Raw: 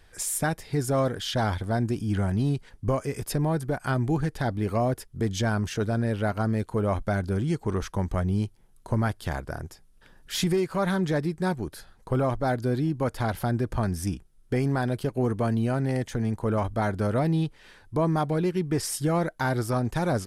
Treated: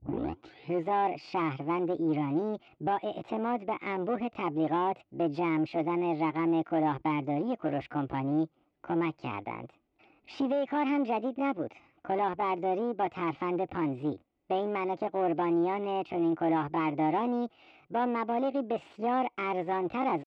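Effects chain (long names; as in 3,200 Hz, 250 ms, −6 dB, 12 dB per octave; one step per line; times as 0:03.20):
turntable start at the beginning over 0.94 s
high-shelf EQ 2,300 Hz +5.5 dB
pitch shifter +7 semitones
in parallel at −5 dB: wave folding −25 dBFS
on the sum: loudspeaker in its box 150–3,000 Hz, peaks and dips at 190 Hz −9 dB, 320 Hz +9 dB, 770 Hz +7 dB, 1,700 Hz −8 dB
level −7.5 dB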